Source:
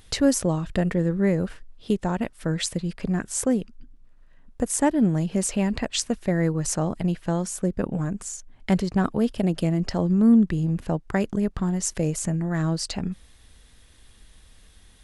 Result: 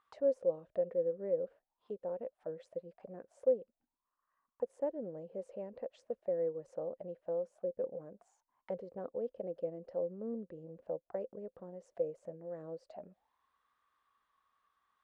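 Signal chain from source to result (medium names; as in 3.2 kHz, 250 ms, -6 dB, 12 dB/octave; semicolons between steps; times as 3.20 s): auto-wah 520–1200 Hz, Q 12, down, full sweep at -23 dBFS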